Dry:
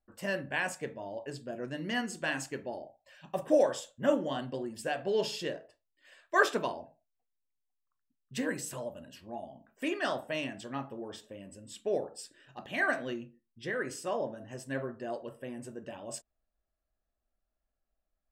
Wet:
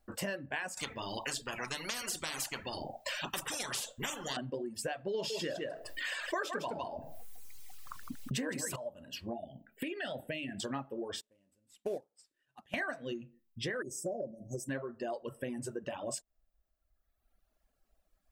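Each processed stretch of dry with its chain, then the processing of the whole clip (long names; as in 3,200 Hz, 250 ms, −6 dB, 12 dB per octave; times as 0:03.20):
0:00.77–0:04.37: flanger 1.5 Hz, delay 3 ms, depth 2.2 ms, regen +76% + every bin compressed towards the loudest bin 10 to 1
0:05.14–0:08.76: single-tap delay 159 ms −7 dB + envelope flattener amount 50%
0:09.33–0:10.60: phaser with its sweep stopped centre 2,600 Hz, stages 4 + downward compressor 3 to 1, threshold −39 dBFS
0:11.21–0:12.74: variable-slope delta modulation 64 kbit/s + expander for the loud parts 2.5 to 1, over −45 dBFS
0:13.82–0:14.69: Chebyshev band-stop filter 670–5,800 Hz, order 4 + comb filter 5.4 ms, depth 42%
whole clip: reverb reduction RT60 1.3 s; downward compressor 6 to 1, threshold −48 dBFS; level +12 dB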